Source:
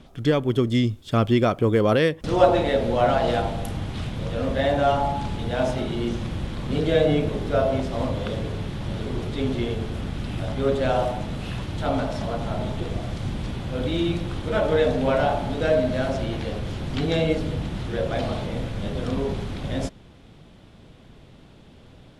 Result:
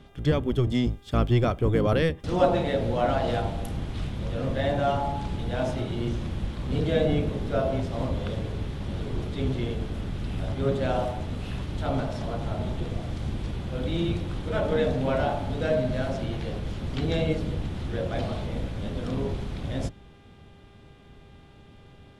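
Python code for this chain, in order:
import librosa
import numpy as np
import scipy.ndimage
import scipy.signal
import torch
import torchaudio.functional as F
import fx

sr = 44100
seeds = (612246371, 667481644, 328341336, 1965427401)

y = fx.octave_divider(x, sr, octaves=1, level_db=1.0)
y = fx.dmg_buzz(y, sr, base_hz=400.0, harmonics=9, level_db=-55.0, tilt_db=-4, odd_only=False)
y = F.gain(torch.from_numpy(y), -5.0).numpy()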